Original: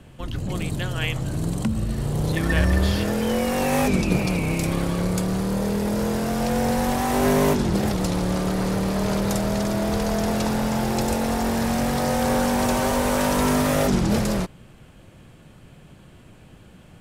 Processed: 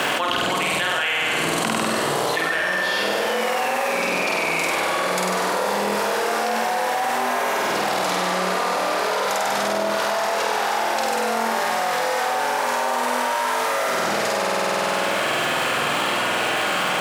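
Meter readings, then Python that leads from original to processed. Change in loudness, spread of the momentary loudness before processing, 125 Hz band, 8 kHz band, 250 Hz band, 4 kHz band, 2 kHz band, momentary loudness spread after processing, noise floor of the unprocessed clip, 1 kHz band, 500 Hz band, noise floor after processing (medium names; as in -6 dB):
+1.5 dB, 6 LU, -14.5 dB, +3.0 dB, -9.0 dB, +8.0 dB, +9.5 dB, 1 LU, -49 dBFS, +7.5 dB, +2.0 dB, -23 dBFS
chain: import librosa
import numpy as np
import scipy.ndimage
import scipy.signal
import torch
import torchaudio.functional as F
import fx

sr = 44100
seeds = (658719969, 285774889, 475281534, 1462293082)

p1 = x + fx.room_flutter(x, sr, wall_m=8.4, rt60_s=1.4, dry=0)
p2 = fx.dmg_crackle(p1, sr, seeds[0], per_s=480.0, level_db=-49.0)
p3 = scipy.signal.sosfilt(scipy.signal.butter(2, 820.0, 'highpass', fs=sr, output='sos'), p2)
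p4 = fx.high_shelf(p3, sr, hz=4200.0, db=-11.0)
y = fx.env_flatten(p4, sr, amount_pct=100)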